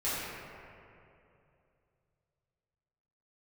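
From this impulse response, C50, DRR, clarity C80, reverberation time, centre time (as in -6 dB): -3.5 dB, -12.5 dB, -1.5 dB, 2.7 s, 165 ms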